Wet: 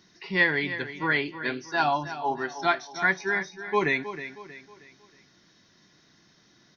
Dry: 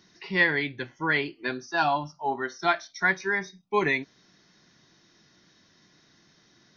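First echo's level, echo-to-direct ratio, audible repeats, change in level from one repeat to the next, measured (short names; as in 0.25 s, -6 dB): -12.0 dB, -11.5 dB, 3, -8.0 dB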